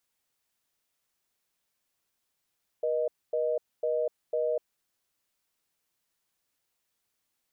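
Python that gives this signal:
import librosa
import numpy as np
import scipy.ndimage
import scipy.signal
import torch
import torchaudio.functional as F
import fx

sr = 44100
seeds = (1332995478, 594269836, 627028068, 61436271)

y = fx.call_progress(sr, length_s=1.9, kind='reorder tone', level_db=-28.0)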